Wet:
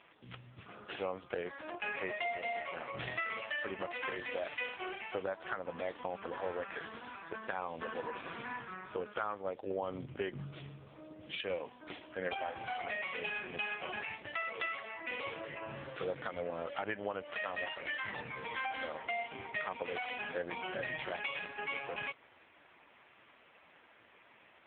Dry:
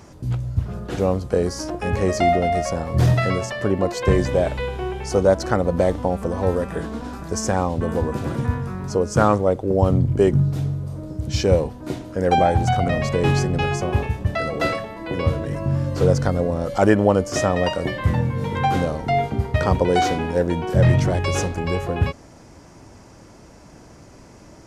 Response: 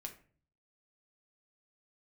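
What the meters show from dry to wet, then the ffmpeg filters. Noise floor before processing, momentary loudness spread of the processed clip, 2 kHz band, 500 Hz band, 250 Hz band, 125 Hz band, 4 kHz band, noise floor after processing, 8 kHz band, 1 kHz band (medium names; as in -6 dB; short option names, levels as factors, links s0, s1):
-46 dBFS, 7 LU, -8.0 dB, -20.0 dB, -26.0 dB, -33.5 dB, -12.0 dB, -63 dBFS, under -40 dB, -17.0 dB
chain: -af "bandpass=f=2700:t=q:w=1.2:csg=0,acompressor=threshold=0.02:ratio=16,volume=1.41" -ar 8000 -c:a libopencore_amrnb -b:a 5150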